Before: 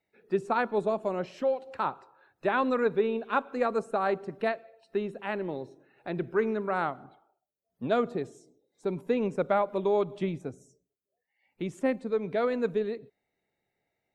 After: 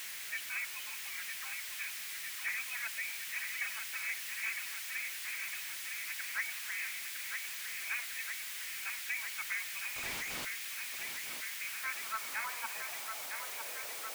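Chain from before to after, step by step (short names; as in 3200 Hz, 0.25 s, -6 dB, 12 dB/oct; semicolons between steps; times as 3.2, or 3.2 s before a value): nonlinear frequency compression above 2200 Hz 4:1; reverb removal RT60 1.5 s; spectral gate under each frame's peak -20 dB weak; in parallel at -10.5 dB: requantised 6-bit, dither triangular; on the sum: high-pass sweep 2000 Hz -> 510 Hz, 11.42–13.66; 9.96–10.45 Schmitt trigger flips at -49.5 dBFS; on a send: thinning echo 0.957 s, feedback 74%, high-pass 200 Hz, level -7.5 dB; on the sum: power-law curve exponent 0.7; gain -5 dB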